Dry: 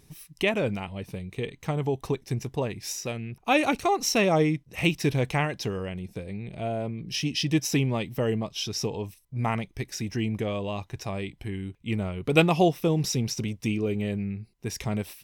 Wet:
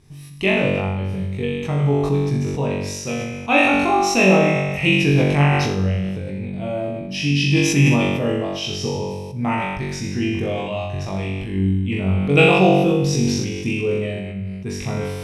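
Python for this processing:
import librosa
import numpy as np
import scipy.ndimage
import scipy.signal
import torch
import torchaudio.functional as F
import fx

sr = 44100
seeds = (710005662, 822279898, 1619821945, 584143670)

y = fx.dynamic_eq(x, sr, hz=2600.0, q=5.6, threshold_db=-48.0, ratio=4.0, max_db=7)
y = scipy.signal.sosfilt(scipy.signal.butter(4, 11000.0, 'lowpass', fs=sr, output='sos'), y)
y = fx.bass_treble(y, sr, bass_db=6, treble_db=-5)
y = fx.hum_notches(y, sr, base_hz=50, count=4)
y = fx.room_flutter(y, sr, wall_m=3.6, rt60_s=0.94)
y = fx.sustainer(y, sr, db_per_s=31.0)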